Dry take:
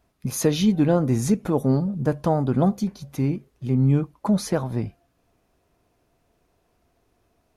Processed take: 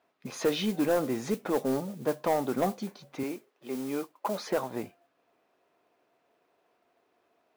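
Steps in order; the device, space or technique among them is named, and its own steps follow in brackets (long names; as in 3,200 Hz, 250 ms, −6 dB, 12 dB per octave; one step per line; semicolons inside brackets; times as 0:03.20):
carbon microphone (band-pass filter 390–3,500 Hz; soft clipping −18 dBFS, distortion −14 dB; noise that follows the level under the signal 19 dB)
0:03.23–0:04.47: high-pass filter 290 Hz 12 dB per octave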